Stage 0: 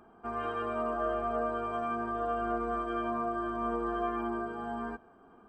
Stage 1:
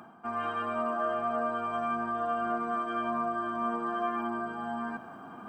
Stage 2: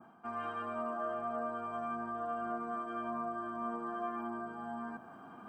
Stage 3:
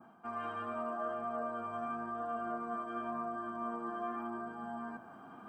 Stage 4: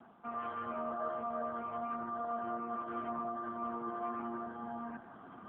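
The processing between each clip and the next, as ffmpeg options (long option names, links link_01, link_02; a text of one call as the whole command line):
ffmpeg -i in.wav -af "highpass=frequency=110:width=0.5412,highpass=frequency=110:width=1.3066,equalizer=frequency=420:width_type=o:width=0.55:gain=-13,areverse,acompressor=mode=upward:threshold=-37dB:ratio=2.5,areverse,volume=3.5dB" out.wav
ffmpeg -i in.wav -af "adynamicequalizer=threshold=0.00316:dfrequency=3200:dqfactor=0.76:tfrequency=3200:tqfactor=0.76:attack=5:release=100:ratio=0.375:range=3.5:mode=cutabove:tftype=bell,volume=-6dB" out.wav
ffmpeg -i in.wav -af "flanger=delay=3.4:depth=6.5:regen=86:speed=0.88:shape=triangular,volume=4dB" out.wav
ffmpeg -i in.wav -af "volume=1dB" -ar 8000 -c:a libopencore_amrnb -b:a 7950 out.amr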